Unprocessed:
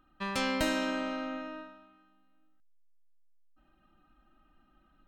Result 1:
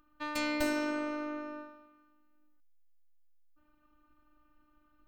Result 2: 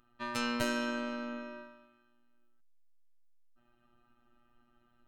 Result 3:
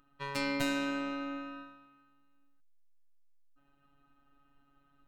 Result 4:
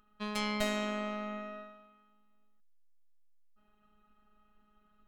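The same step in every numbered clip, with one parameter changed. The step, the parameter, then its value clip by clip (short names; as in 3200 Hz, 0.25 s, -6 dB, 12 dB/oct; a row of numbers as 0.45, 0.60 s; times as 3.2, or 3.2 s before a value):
robotiser, frequency: 300, 120, 140, 210 Hz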